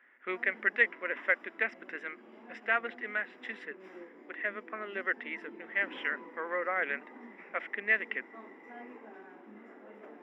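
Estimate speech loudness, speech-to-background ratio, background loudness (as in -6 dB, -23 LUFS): -33.0 LUFS, 18.5 dB, -51.5 LUFS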